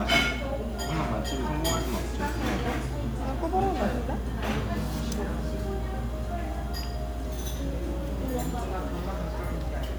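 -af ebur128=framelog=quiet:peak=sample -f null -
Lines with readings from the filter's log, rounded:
Integrated loudness:
  I:         -30.5 LUFS
  Threshold: -40.4 LUFS
Loudness range:
  LRA:         3.5 LU
  Threshold: -50.7 LUFS
  LRA low:   -32.6 LUFS
  LRA high:  -29.1 LUFS
Sample peak:
  Peak:       -8.7 dBFS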